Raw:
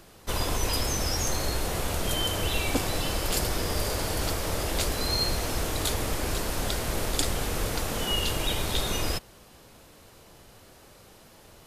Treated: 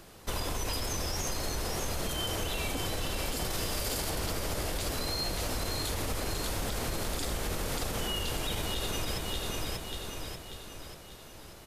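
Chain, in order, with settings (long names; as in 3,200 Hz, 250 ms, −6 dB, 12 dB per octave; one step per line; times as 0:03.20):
repeating echo 588 ms, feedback 48%, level −6 dB
brickwall limiter −19 dBFS, peak gain reduction 9.5 dB
0:03.50–0:04.10: parametric band 12,000 Hz +4.5 dB 2.9 octaves
downward compressor, threshold −29 dBFS, peak gain reduction 5.5 dB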